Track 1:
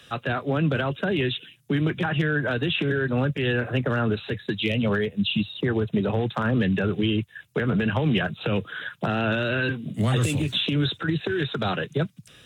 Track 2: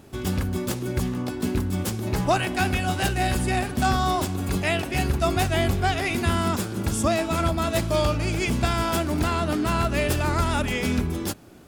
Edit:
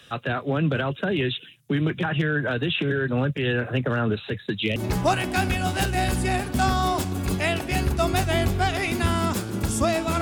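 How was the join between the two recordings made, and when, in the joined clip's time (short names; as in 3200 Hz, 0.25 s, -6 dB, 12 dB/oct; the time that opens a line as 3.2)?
track 1
4.76 switch to track 2 from 1.99 s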